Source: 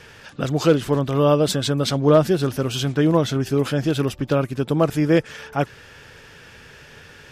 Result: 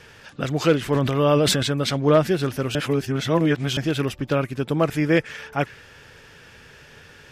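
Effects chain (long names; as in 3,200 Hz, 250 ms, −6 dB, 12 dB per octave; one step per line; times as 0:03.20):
dynamic equaliser 2,100 Hz, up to +8 dB, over −42 dBFS, Q 1.5
0:00.82–0:01.63: level that may fall only so fast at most 25 dB per second
0:02.75–0:03.77: reverse
level −2.5 dB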